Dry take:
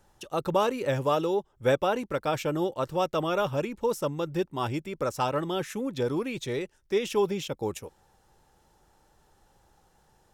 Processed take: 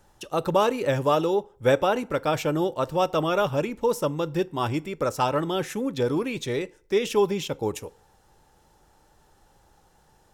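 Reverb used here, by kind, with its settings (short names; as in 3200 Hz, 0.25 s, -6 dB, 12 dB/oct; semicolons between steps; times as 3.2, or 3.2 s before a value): FDN reverb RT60 0.52 s, low-frequency decay 0.8×, high-frequency decay 0.7×, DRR 17.5 dB; gain +3.5 dB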